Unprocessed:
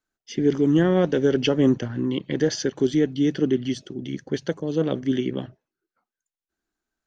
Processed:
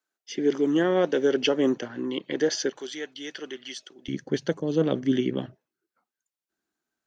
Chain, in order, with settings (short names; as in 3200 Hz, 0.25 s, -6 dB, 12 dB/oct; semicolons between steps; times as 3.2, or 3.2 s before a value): HPF 340 Hz 12 dB/oct, from 2.77 s 920 Hz, from 4.08 s 120 Hz